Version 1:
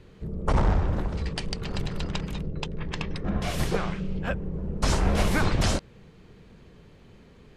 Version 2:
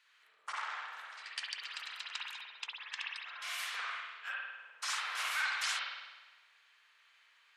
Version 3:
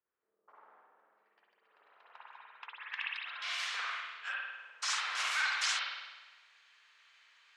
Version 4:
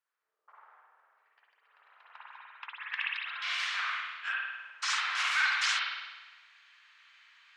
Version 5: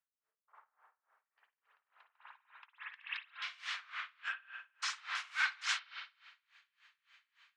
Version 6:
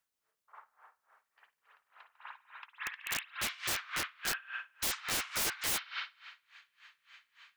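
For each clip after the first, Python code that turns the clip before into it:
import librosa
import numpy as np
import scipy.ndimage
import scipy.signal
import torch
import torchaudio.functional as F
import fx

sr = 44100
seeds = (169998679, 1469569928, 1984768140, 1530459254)

y1 = scipy.signal.sosfilt(scipy.signal.butter(4, 1300.0, 'highpass', fs=sr, output='sos'), x)
y1 = fx.rev_spring(y1, sr, rt60_s=1.2, pass_ms=(49,), chirp_ms=20, drr_db=-3.5)
y1 = y1 * librosa.db_to_amplitude(-6.0)
y2 = fx.filter_sweep_lowpass(y1, sr, from_hz=330.0, to_hz=6800.0, start_s=1.62, end_s=3.77, q=1.3)
y2 = y2 * librosa.db_to_amplitude(1.5)
y3 = scipy.signal.sosfilt(scipy.signal.butter(2, 1100.0, 'highpass', fs=sr, output='sos'), y2)
y3 = fx.high_shelf(y3, sr, hz=5100.0, db=-12.0)
y3 = y3 * librosa.db_to_amplitude(7.0)
y4 = y3 * 10.0 ** (-25 * (0.5 - 0.5 * np.cos(2.0 * np.pi * 3.5 * np.arange(len(y3)) / sr)) / 20.0)
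y4 = y4 * librosa.db_to_amplitude(-3.0)
y5 = (np.mod(10.0 ** (35.0 / 20.0) * y4 + 1.0, 2.0) - 1.0) / 10.0 ** (35.0 / 20.0)
y5 = y5 * librosa.db_to_amplitude(8.0)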